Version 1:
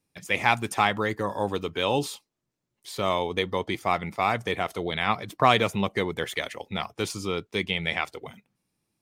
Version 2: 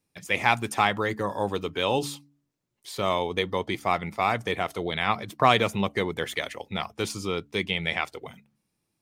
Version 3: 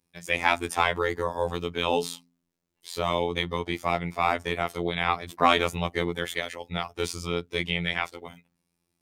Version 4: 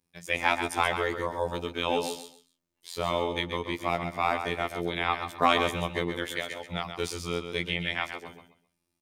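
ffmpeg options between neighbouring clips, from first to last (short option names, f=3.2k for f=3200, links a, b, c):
-af "bandreject=f=71.59:t=h:w=4,bandreject=f=143.18:t=h:w=4,bandreject=f=214.77:t=h:w=4,bandreject=f=286.36:t=h:w=4"
-af "afftfilt=real='hypot(re,im)*cos(PI*b)':imag='0':win_size=2048:overlap=0.75,volume=3dB"
-af "aecho=1:1:131|262|393:0.398|0.0955|0.0229,volume=-2.5dB"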